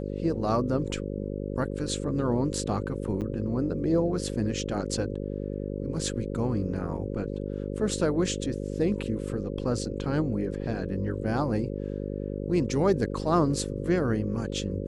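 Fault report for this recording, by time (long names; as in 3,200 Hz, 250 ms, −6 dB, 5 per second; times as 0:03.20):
mains buzz 50 Hz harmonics 11 −33 dBFS
0:03.21–0:03.22: drop-out 8.1 ms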